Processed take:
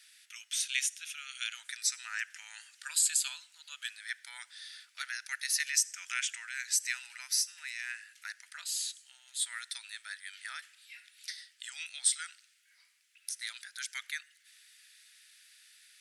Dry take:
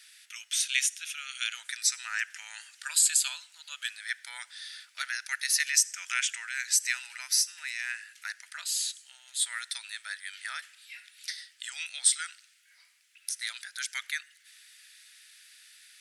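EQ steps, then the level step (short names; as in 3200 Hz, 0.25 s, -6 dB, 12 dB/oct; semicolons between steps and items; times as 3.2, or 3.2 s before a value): HPF 640 Hz 6 dB/oct; -4.5 dB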